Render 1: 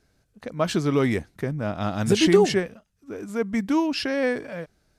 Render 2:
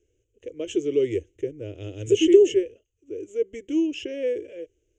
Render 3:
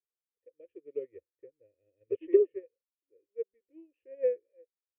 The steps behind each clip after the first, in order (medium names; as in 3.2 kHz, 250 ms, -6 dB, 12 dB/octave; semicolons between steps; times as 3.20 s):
FFT filter 110 Hz 0 dB, 190 Hz -28 dB, 340 Hz +9 dB, 490 Hz +7 dB, 740 Hz -22 dB, 1.2 kHz -27 dB, 3 kHz +5 dB, 4.4 kHz -27 dB, 6.7 kHz +6 dB, 11 kHz -24 dB; trim -5 dB
cascade formant filter e; upward expansion 2.5:1, over -45 dBFS; trim +6.5 dB